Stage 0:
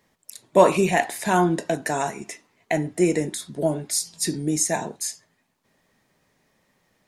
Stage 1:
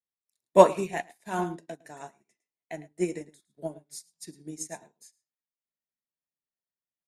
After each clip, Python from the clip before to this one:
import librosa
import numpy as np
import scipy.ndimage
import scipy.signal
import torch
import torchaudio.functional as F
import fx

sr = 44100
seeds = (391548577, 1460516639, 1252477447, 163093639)

y = x + 10.0 ** (-10.0 / 20.0) * np.pad(x, (int(108 * sr / 1000.0), 0))[:len(x)]
y = fx.upward_expand(y, sr, threshold_db=-37.0, expansion=2.5)
y = y * 10.0 ** (1.0 / 20.0)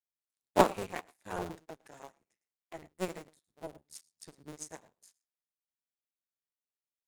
y = fx.cycle_switch(x, sr, every=2, mode='muted')
y = fx.vibrato(y, sr, rate_hz=0.4, depth_cents=49.0)
y = y * 10.0 ** (-5.0 / 20.0)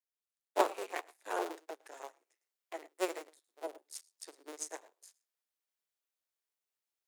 y = scipy.signal.sosfilt(scipy.signal.butter(6, 340.0, 'highpass', fs=sr, output='sos'), x)
y = fx.rider(y, sr, range_db=4, speed_s=0.5)
y = y * 10.0 ** (-1.0 / 20.0)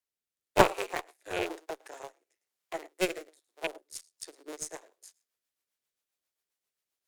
y = fx.rattle_buzz(x, sr, strikes_db=-49.0, level_db=-27.0)
y = fx.cheby_harmonics(y, sr, harmonics=(3, 4), levels_db=(-23, -15), full_scale_db=-11.0)
y = fx.rotary_switch(y, sr, hz=1.0, then_hz=7.5, switch_at_s=3.54)
y = y * 10.0 ** (8.5 / 20.0)